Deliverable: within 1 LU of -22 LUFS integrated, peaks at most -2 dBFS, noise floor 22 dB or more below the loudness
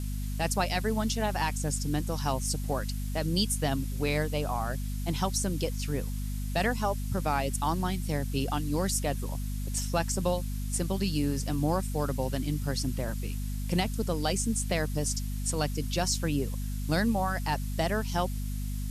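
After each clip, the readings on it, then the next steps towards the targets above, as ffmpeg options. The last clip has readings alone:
hum 50 Hz; highest harmonic 250 Hz; hum level -30 dBFS; noise floor -33 dBFS; noise floor target -53 dBFS; loudness -30.5 LUFS; peak level -13.5 dBFS; loudness target -22.0 LUFS
-> -af "bandreject=f=50:t=h:w=4,bandreject=f=100:t=h:w=4,bandreject=f=150:t=h:w=4,bandreject=f=200:t=h:w=4,bandreject=f=250:t=h:w=4"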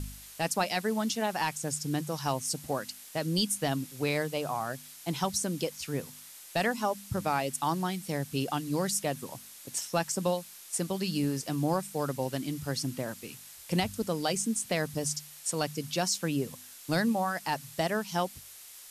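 hum not found; noise floor -49 dBFS; noise floor target -54 dBFS
-> -af "afftdn=nr=6:nf=-49"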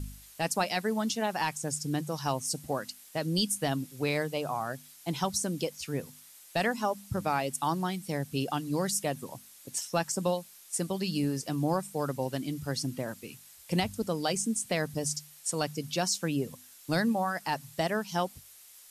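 noise floor -54 dBFS; loudness -31.5 LUFS; peak level -15.5 dBFS; loudness target -22.0 LUFS
-> -af "volume=2.99"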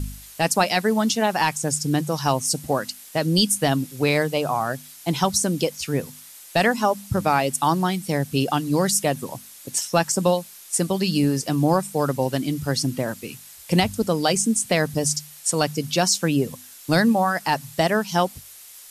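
loudness -22.0 LUFS; peak level -6.0 dBFS; noise floor -44 dBFS

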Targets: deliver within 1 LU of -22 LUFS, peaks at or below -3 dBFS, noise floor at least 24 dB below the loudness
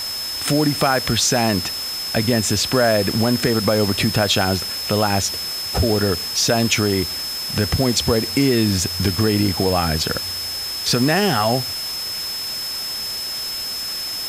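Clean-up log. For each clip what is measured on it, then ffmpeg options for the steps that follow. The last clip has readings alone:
steady tone 5.2 kHz; tone level -25 dBFS; noise floor -27 dBFS; noise floor target -43 dBFS; loudness -19.0 LUFS; peak level -4.0 dBFS; loudness target -22.0 LUFS
-> -af "bandreject=f=5200:w=30"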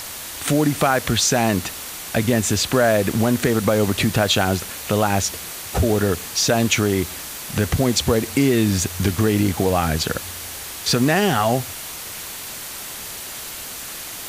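steady tone not found; noise floor -33 dBFS; noise floor target -45 dBFS
-> -af "afftdn=nr=12:nf=-33"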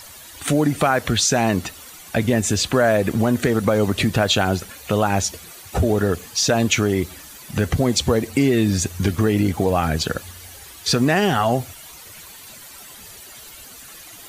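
noise floor -41 dBFS; noise floor target -44 dBFS
-> -af "afftdn=nr=6:nf=-41"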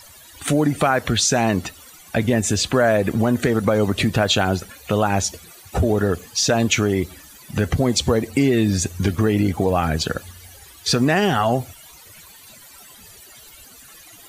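noise floor -45 dBFS; loudness -20.0 LUFS; peak level -5.5 dBFS; loudness target -22.0 LUFS
-> -af "volume=0.794"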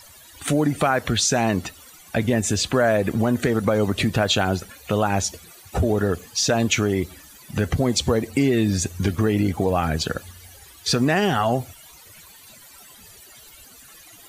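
loudness -22.0 LUFS; peak level -7.5 dBFS; noise floor -47 dBFS

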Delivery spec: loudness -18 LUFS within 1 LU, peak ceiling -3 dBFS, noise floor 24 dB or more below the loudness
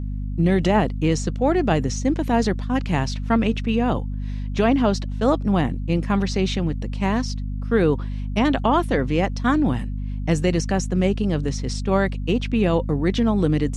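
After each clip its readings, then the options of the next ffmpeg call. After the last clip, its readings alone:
hum 50 Hz; highest harmonic 250 Hz; hum level -24 dBFS; loudness -22.0 LUFS; peak level -5.5 dBFS; loudness target -18.0 LUFS
-> -af "bandreject=f=50:t=h:w=4,bandreject=f=100:t=h:w=4,bandreject=f=150:t=h:w=4,bandreject=f=200:t=h:w=4,bandreject=f=250:t=h:w=4"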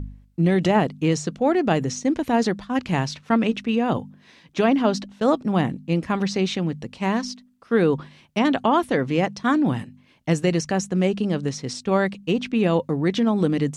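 hum not found; loudness -22.5 LUFS; peak level -6.5 dBFS; loudness target -18.0 LUFS
-> -af "volume=1.68,alimiter=limit=0.708:level=0:latency=1"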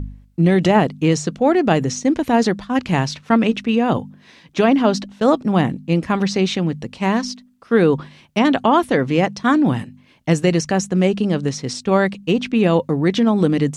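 loudness -18.0 LUFS; peak level -3.0 dBFS; noise floor -51 dBFS

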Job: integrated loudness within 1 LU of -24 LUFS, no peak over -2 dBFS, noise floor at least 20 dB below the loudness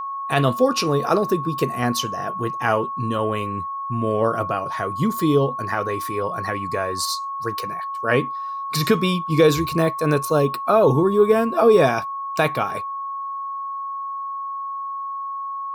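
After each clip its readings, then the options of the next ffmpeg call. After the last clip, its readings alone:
steady tone 1.1 kHz; tone level -26 dBFS; loudness -21.5 LUFS; peak level -5.0 dBFS; loudness target -24.0 LUFS
-> -af "bandreject=f=1100:w=30"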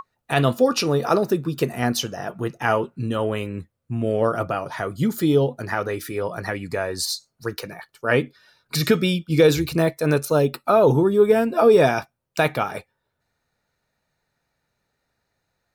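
steady tone not found; loudness -21.5 LUFS; peak level -5.0 dBFS; loudness target -24.0 LUFS
-> -af "volume=0.75"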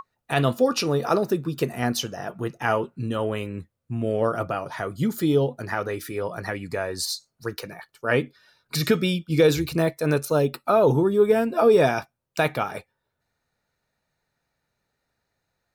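loudness -24.0 LUFS; peak level -7.5 dBFS; noise floor -79 dBFS

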